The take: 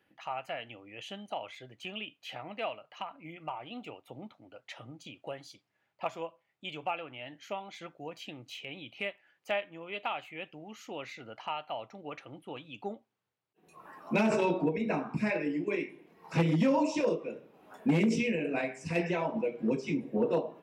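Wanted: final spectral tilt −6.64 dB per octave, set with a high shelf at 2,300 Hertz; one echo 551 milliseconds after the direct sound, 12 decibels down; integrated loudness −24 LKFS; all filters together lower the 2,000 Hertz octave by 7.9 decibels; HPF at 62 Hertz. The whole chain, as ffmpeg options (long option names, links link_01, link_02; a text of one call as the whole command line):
ffmpeg -i in.wav -af "highpass=62,equalizer=frequency=2000:width_type=o:gain=-6,highshelf=frequency=2300:gain=-7,aecho=1:1:551:0.251,volume=10.5dB" out.wav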